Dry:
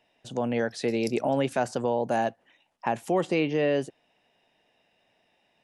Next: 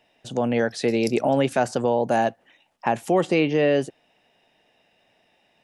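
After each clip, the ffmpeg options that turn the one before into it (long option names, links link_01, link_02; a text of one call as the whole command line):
ffmpeg -i in.wav -af "bandreject=frequency=990:width=22,volume=5dB" out.wav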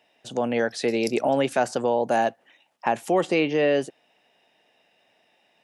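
ffmpeg -i in.wav -af "highpass=frequency=270:poles=1" out.wav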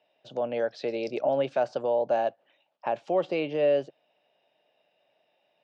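ffmpeg -i in.wav -af "highpass=120,equalizer=frequency=140:width_type=q:width=4:gain=4,equalizer=frequency=230:width_type=q:width=4:gain=-5,equalizer=frequency=590:width_type=q:width=4:gain=9,equalizer=frequency=1900:width_type=q:width=4:gain=-6,lowpass=frequency=4700:width=0.5412,lowpass=frequency=4700:width=1.3066,volume=-8dB" out.wav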